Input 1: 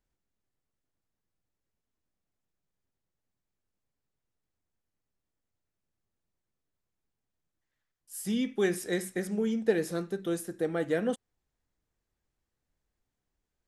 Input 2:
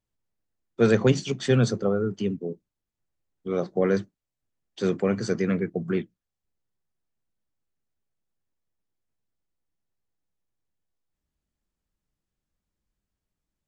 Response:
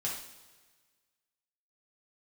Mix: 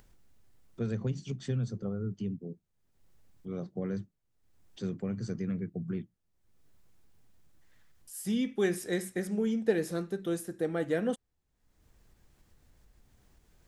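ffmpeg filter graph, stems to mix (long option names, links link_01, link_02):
-filter_complex "[0:a]volume=-2dB[link_01];[1:a]bass=frequency=250:gain=12,treble=frequency=4000:gain=4,acompressor=threshold=-15dB:ratio=6,volume=-16dB[link_02];[link_01][link_02]amix=inputs=2:normalize=0,lowshelf=frequency=210:gain=4,acompressor=mode=upward:threshold=-45dB:ratio=2.5"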